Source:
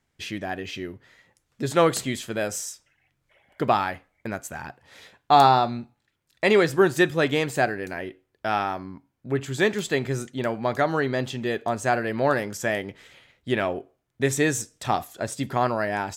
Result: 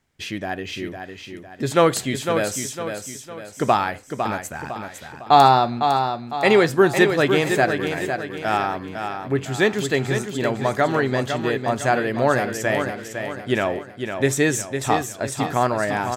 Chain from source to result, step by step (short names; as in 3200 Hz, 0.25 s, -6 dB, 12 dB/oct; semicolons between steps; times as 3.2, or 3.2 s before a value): feedback echo 0.505 s, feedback 43%, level -7 dB; gain +3 dB